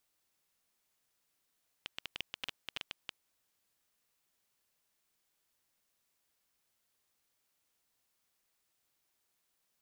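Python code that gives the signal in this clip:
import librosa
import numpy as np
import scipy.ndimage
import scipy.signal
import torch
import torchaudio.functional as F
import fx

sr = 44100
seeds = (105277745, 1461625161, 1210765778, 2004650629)

y = fx.geiger_clicks(sr, seeds[0], length_s=2.32, per_s=7.3, level_db=-21.0)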